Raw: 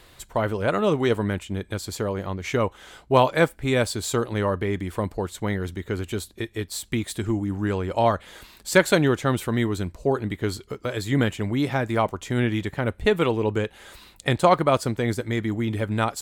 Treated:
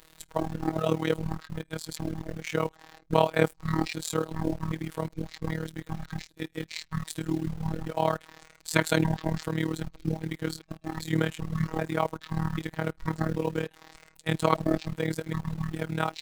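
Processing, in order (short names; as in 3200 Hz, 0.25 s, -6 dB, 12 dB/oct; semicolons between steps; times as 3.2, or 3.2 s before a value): trilling pitch shifter -11 st, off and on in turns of 0.393 s; robotiser 159 Hz; in parallel at -8 dB: bit-crush 6-bit; on the sum: AM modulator 38 Hz, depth 70%; gain -2 dB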